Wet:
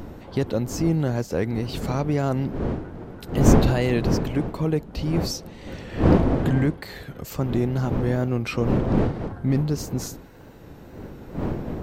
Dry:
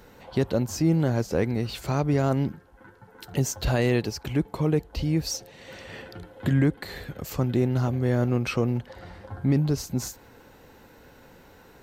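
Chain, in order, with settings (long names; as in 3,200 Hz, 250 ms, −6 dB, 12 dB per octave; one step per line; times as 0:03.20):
wind on the microphone 310 Hz −26 dBFS
tape wow and flutter 58 cents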